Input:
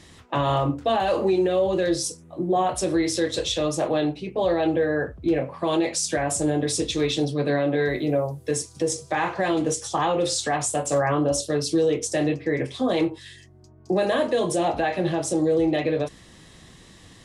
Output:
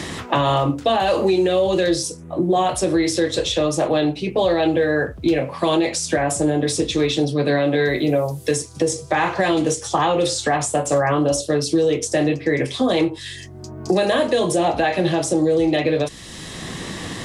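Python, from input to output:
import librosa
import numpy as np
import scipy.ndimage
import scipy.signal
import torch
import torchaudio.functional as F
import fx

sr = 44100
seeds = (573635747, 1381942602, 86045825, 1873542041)

y = fx.band_squash(x, sr, depth_pct=70)
y = y * 10.0 ** (4.0 / 20.0)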